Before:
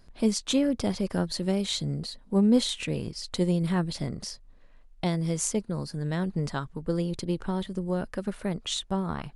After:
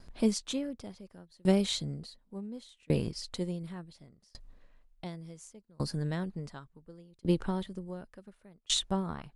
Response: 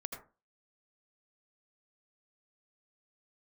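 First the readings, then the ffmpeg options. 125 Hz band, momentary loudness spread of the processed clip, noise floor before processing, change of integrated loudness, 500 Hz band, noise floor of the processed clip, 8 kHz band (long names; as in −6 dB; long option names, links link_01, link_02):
−6.5 dB, 21 LU, −54 dBFS, −5.0 dB, −5.5 dB, −68 dBFS, −6.0 dB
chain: -af "aeval=exprs='val(0)*pow(10,-34*if(lt(mod(0.69*n/s,1),2*abs(0.69)/1000),1-mod(0.69*n/s,1)/(2*abs(0.69)/1000),(mod(0.69*n/s,1)-2*abs(0.69)/1000)/(1-2*abs(0.69)/1000))/20)':channel_layout=same,volume=3.5dB"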